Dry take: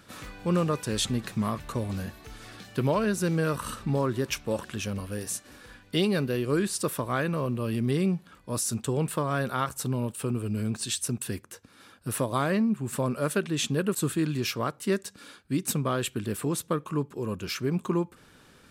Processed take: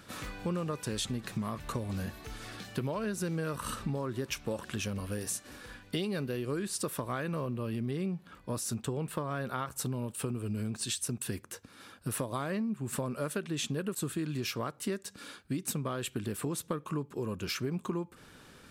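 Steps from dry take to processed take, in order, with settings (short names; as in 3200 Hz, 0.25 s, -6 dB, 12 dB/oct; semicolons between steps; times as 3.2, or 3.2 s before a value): 7.45–9.76 bell 8700 Hz -5 dB 1.8 oct; compressor, threshold -32 dBFS, peak gain reduction 11.5 dB; gain +1 dB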